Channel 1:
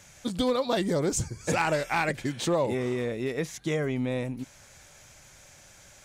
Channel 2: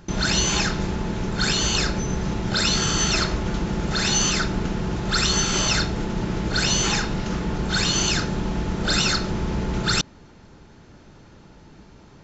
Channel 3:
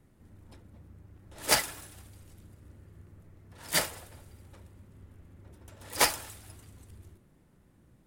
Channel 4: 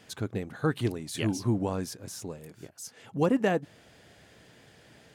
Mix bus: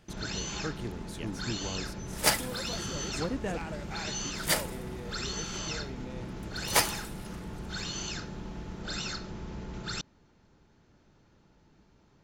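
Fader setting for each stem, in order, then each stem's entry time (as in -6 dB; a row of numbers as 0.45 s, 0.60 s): -15.5 dB, -15.0 dB, -0.5 dB, -9.5 dB; 2.00 s, 0.00 s, 0.75 s, 0.00 s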